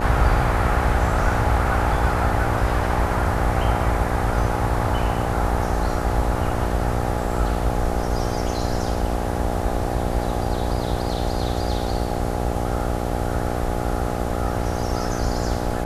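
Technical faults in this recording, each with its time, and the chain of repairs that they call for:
mains buzz 60 Hz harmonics 14 −26 dBFS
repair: hum removal 60 Hz, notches 14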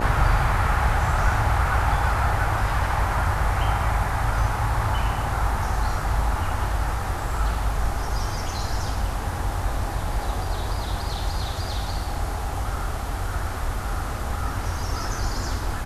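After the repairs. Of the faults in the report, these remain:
none of them is left

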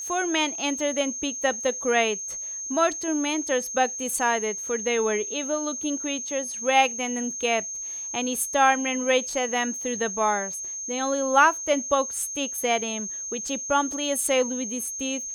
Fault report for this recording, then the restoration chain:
whistle 6,400 Hz −31 dBFS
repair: notch filter 6,400 Hz, Q 30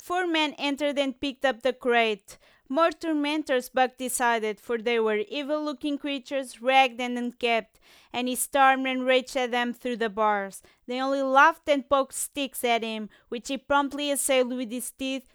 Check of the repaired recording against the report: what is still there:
none of them is left

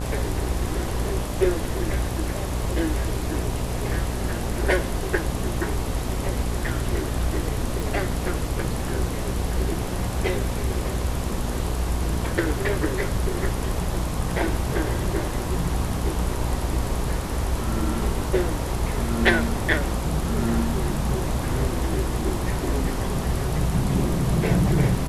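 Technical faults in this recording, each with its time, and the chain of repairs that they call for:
mains buzz 60 Hz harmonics 21 −29 dBFS
0:07.80: click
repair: click removal
hum removal 60 Hz, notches 21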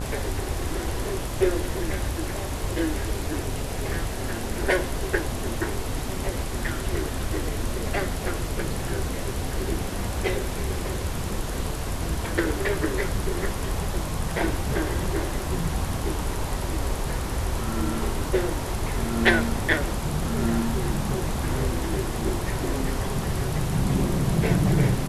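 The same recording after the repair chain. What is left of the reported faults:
none of them is left

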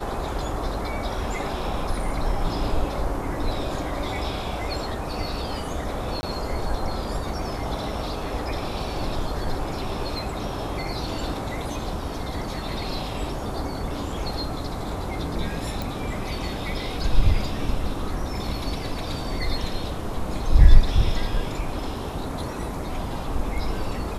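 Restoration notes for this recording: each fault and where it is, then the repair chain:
0:06.21–0:06.23: drop-out 20 ms
0:15.82: click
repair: click removal
repair the gap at 0:06.21, 20 ms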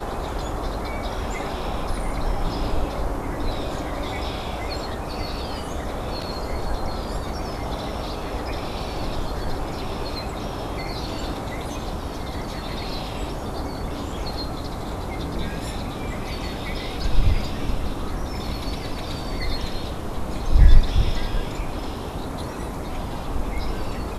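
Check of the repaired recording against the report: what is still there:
none of them is left

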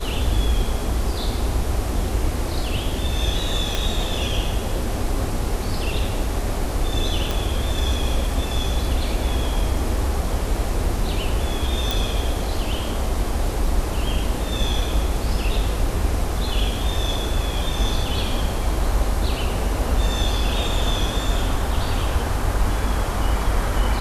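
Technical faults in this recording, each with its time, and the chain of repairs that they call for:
0:03.75: click
0:07.31: click
0:11.91: click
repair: click removal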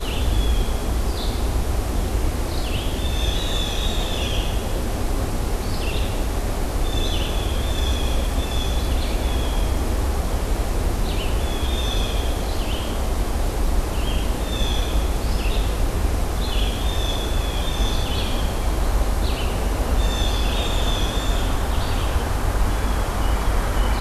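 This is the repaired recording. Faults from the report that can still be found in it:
0:03.75: click

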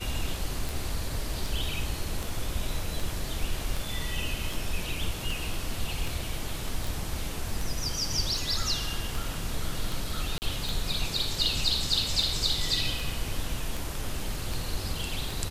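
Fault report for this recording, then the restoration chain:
scratch tick 78 rpm
0:06.87: click
0:10.38–0:10.42: drop-out 39 ms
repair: click removal
repair the gap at 0:10.38, 39 ms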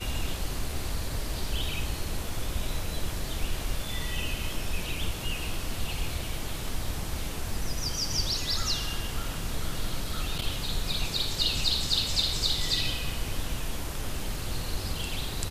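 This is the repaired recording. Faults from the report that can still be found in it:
none of them is left

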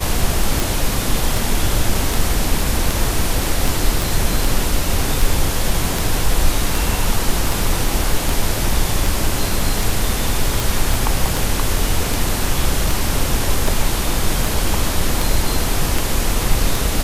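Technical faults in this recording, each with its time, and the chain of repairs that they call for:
scratch tick 78 rpm
0:04.02: click
0:10.94: click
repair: click removal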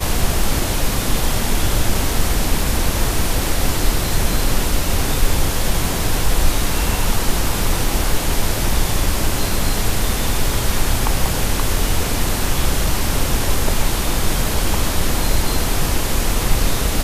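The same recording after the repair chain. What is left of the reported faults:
0:10.94: click

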